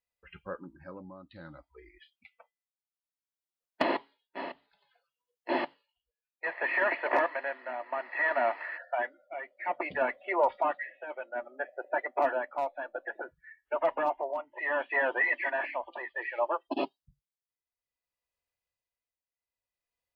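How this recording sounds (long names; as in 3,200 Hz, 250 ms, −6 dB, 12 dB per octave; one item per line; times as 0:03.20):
tremolo triangle 0.61 Hz, depth 75%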